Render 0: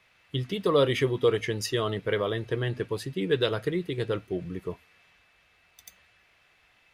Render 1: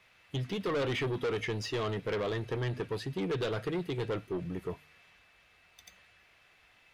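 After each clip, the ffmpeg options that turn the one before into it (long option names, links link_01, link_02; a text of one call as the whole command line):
ffmpeg -i in.wav -filter_complex "[0:a]bandreject=frequency=74.96:width_type=h:width=4,bandreject=frequency=149.92:width_type=h:width=4,asoftclip=type=tanh:threshold=-28.5dB,acrossover=split=5500[link_01][link_02];[link_02]acompressor=threshold=-57dB:ratio=4:attack=1:release=60[link_03];[link_01][link_03]amix=inputs=2:normalize=0" out.wav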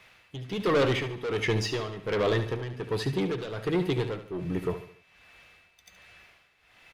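ffmpeg -i in.wav -filter_complex "[0:a]tremolo=f=1.3:d=0.77,asplit=2[link_01][link_02];[link_02]aecho=0:1:72|144|216|288:0.282|0.121|0.0521|0.0224[link_03];[link_01][link_03]amix=inputs=2:normalize=0,volume=8dB" out.wav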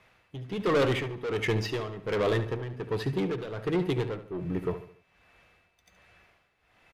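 ffmpeg -i in.wav -filter_complex "[0:a]asplit=2[link_01][link_02];[link_02]adynamicsmooth=sensitivity=7.5:basefreq=1700,volume=2.5dB[link_03];[link_01][link_03]amix=inputs=2:normalize=0,aresample=32000,aresample=44100,volume=-8dB" out.wav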